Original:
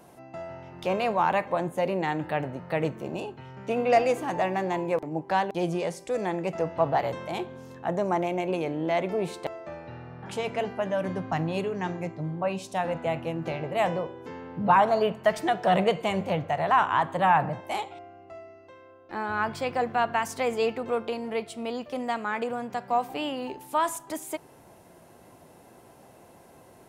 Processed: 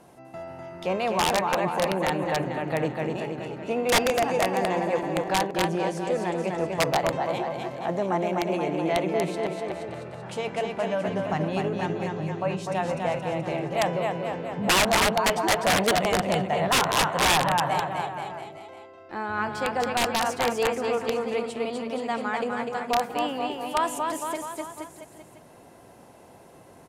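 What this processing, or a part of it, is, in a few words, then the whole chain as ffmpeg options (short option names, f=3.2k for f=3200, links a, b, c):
overflowing digital effects unit: -af "aecho=1:1:250|475|677.5|859.8|1024:0.631|0.398|0.251|0.158|0.1,aeval=exprs='(mod(5.31*val(0)+1,2)-1)/5.31':c=same,lowpass=12k"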